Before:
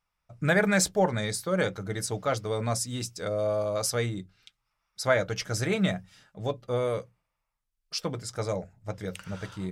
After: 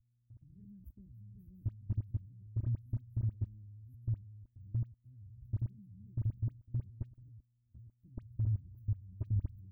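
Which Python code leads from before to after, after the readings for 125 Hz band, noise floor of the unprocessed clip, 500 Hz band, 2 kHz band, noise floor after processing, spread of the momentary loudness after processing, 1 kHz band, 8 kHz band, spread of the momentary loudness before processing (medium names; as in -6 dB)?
-2.5 dB, -82 dBFS, under -35 dB, under -40 dB, -76 dBFS, 19 LU, under -40 dB, under -40 dB, 12 LU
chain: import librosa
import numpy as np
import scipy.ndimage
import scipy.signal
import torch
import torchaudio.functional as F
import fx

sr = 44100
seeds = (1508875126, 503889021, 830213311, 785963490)

y = fx.reverse_delay(x, sr, ms=492, wet_db=-3)
y = scipy.signal.sosfilt(scipy.signal.butter(4, 42.0, 'highpass', fs=sr, output='sos'), y)
y = fx.dmg_buzz(y, sr, base_hz=120.0, harmonics=21, level_db=-55.0, tilt_db=-4, odd_only=False)
y = fx.low_shelf(y, sr, hz=480.0, db=-8.0)
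y = fx.rider(y, sr, range_db=4, speed_s=0.5)
y = scipy.signal.sosfilt(scipy.signal.cheby2(4, 80, [610.0, 8400.0], 'bandstop', fs=sr, output='sos'), y)
y = fx.high_shelf(y, sr, hz=2300.0, db=-5.0)
y = fx.level_steps(y, sr, step_db=22)
y = y + 0.74 * np.pad(y, (int(3.2 * sr / 1000.0), 0))[:len(y)]
y = fx.dispersion(y, sr, late='highs', ms=47.0, hz=2200.0)
y = F.gain(torch.from_numpy(y), 15.5).numpy()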